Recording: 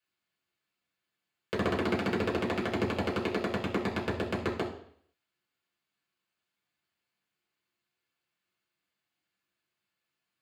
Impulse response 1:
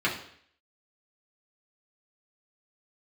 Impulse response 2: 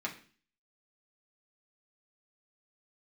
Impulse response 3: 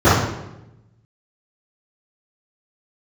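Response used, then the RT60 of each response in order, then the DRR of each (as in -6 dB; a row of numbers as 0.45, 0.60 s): 1; 0.60, 0.40, 0.95 s; -6.0, -2.5, -14.5 dB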